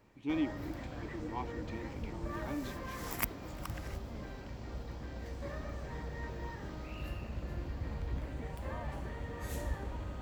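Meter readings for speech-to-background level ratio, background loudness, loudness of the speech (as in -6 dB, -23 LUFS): 0.0 dB, -42.0 LUFS, -42.0 LUFS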